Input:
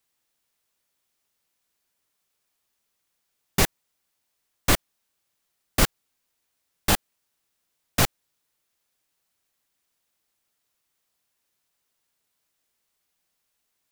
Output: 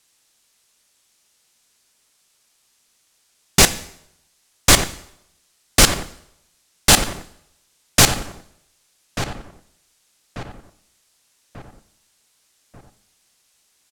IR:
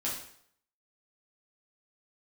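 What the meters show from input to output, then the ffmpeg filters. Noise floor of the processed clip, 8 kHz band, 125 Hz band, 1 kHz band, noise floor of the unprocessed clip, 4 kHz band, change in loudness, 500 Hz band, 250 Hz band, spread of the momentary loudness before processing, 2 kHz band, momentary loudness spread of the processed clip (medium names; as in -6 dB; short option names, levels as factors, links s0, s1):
-64 dBFS, +13.5 dB, +6.5 dB, +7.5 dB, -77 dBFS, +12.0 dB, +9.0 dB, +7.5 dB, +6.5 dB, 6 LU, +9.0 dB, 15 LU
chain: -filter_complex "[0:a]lowpass=8500,highshelf=f=3900:g=11.5,asoftclip=type=tanh:threshold=0.178,asplit=2[s0][s1];[s1]adelay=1189,lowpass=f=1900:p=1,volume=0.355,asplit=2[s2][s3];[s3]adelay=1189,lowpass=f=1900:p=1,volume=0.48,asplit=2[s4][s5];[s5]adelay=1189,lowpass=f=1900:p=1,volume=0.48,asplit=2[s6][s7];[s7]adelay=1189,lowpass=f=1900:p=1,volume=0.48,asplit=2[s8][s9];[s9]adelay=1189,lowpass=f=1900:p=1,volume=0.48[s10];[s0][s2][s4][s6][s8][s10]amix=inputs=6:normalize=0,asplit=2[s11][s12];[1:a]atrim=start_sample=2205,asetrate=37485,aresample=44100[s13];[s12][s13]afir=irnorm=-1:irlink=0,volume=0.168[s14];[s11][s14]amix=inputs=2:normalize=0,volume=2.82"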